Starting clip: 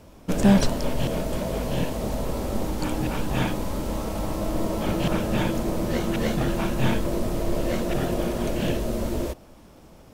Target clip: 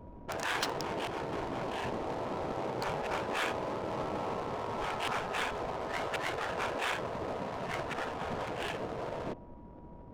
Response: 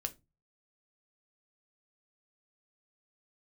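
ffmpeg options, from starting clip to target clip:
-af "afftfilt=real='re*lt(hypot(re,im),0.141)':imag='im*lt(hypot(re,im),0.141)':win_size=1024:overlap=0.75,adynamicsmooth=sensitivity=6:basefreq=660,aeval=exprs='val(0)+0.00126*sin(2*PI*960*n/s)':channel_layout=same"

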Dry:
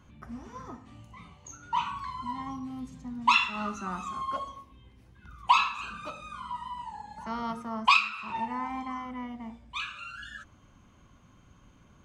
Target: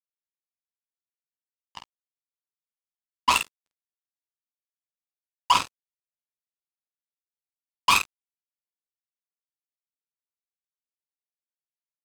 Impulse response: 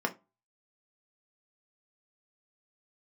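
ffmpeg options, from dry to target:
-filter_complex "[0:a]acrusher=bits=2:mix=0:aa=0.5,asplit=2[link_01][link_02];[link_02]aecho=0:1:11|49:0.422|0.501[link_03];[link_01][link_03]amix=inputs=2:normalize=0"

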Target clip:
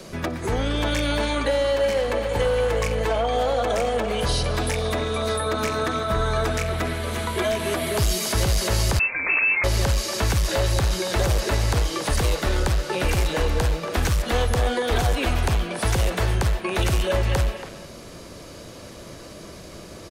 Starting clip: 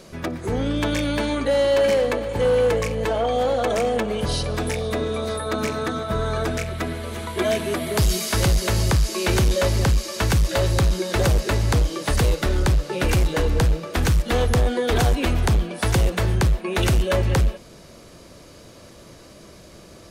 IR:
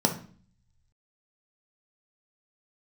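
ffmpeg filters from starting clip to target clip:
-filter_complex "[0:a]acrossover=split=800[link_01][link_02];[link_02]alimiter=limit=-20dB:level=0:latency=1:release=53[link_03];[link_01][link_03]amix=inputs=2:normalize=0,acrossover=split=86|600[link_04][link_05][link_06];[link_04]acompressor=threshold=-26dB:ratio=4[link_07];[link_05]acompressor=threshold=-34dB:ratio=4[link_08];[link_06]acompressor=threshold=-28dB:ratio=4[link_09];[link_07][link_08][link_09]amix=inputs=3:normalize=0,asplit=2[link_10][link_11];[link_11]adelay=280,highpass=300,lowpass=3400,asoftclip=type=hard:threshold=-23.5dB,volume=-9dB[link_12];[link_10][link_12]amix=inputs=2:normalize=0,asettb=1/sr,asplit=3[link_13][link_14][link_15];[link_13]atrim=end=8.994[link_16];[link_14]atrim=start=8.99:end=9.64,asetpts=PTS-STARTPTS,afade=type=in:duration=0.004:curve=qsin,afade=type=out:start_time=0.646:duration=0.004:curve=qsin,lowpass=frequency=2300:width_type=q:width=0.5098,lowpass=frequency=2300:width_type=q:width=0.6013,lowpass=frequency=2300:width_type=q:width=0.9,lowpass=frequency=2300:width_type=q:width=2.563,afreqshift=-2700[link_17];[link_15]atrim=start=9.636[link_18];[link_16][link_17]acrossfade=duration=0.004:curve1=hsin:curve2=qsin[link_19];[link_19][link_18]acrossfade=duration=0.004:curve1=qsin:curve2=hsin,volume=4.5dB"

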